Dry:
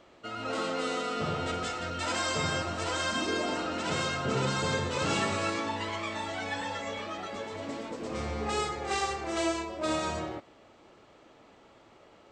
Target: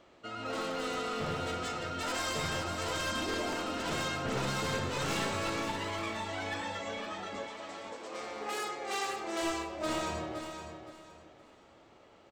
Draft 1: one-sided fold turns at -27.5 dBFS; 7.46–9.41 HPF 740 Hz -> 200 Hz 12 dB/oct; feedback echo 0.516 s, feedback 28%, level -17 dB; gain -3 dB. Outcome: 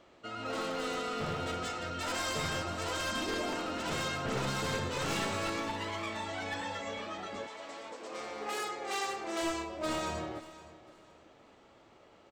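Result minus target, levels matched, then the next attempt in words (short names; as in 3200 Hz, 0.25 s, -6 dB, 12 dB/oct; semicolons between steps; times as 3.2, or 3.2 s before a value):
echo-to-direct -8.5 dB
one-sided fold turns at -27.5 dBFS; 7.46–9.41 HPF 740 Hz -> 200 Hz 12 dB/oct; feedback echo 0.516 s, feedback 28%, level -8.5 dB; gain -3 dB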